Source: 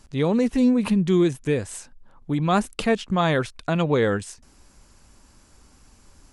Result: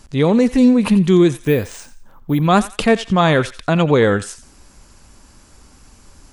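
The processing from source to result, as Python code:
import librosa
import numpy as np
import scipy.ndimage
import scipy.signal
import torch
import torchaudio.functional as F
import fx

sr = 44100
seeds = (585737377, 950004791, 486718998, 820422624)

y = fx.resample_bad(x, sr, factor=3, down='filtered', up='hold', at=(1.41, 2.42))
y = fx.echo_thinned(y, sr, ms=87, feedback_pct=32, hz=1100.0, wet_db=-13.5)
y = y * 10.0 ** (7.0 / 20.0)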